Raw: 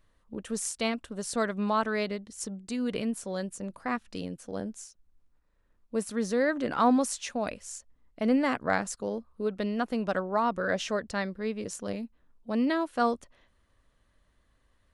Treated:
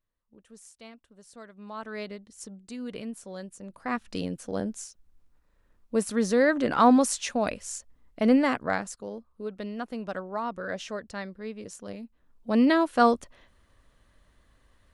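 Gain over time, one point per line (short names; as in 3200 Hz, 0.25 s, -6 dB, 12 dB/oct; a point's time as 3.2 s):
1.53 s -18 dB
1.99 s -6 dB
3.63 s -6 dB
4.07 s +4.5 dB
8.32 s +4.5 dB
9.04 s -5 dB
11.98 s -5 dB
12.57 s +6 dB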